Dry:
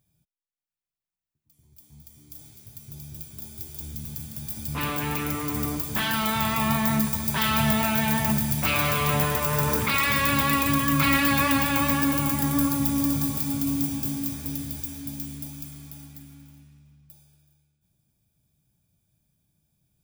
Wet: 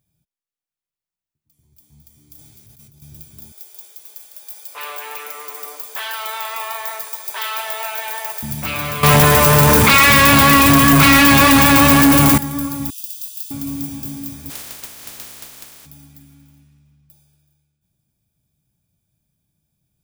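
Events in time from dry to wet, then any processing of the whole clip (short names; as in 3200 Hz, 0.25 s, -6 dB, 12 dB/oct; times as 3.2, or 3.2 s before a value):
2.36–3.02 negative-ratio compressor -46 dBFS
3.52–8.43 steep high-pass 430 Hz 48 dB/oct
9.03–12.38 sample leveller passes 5
12.9–13.51 brick-wall FIR high-pass 2500 Hz
14.49–15.85 spectral contrast lowered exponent 0.12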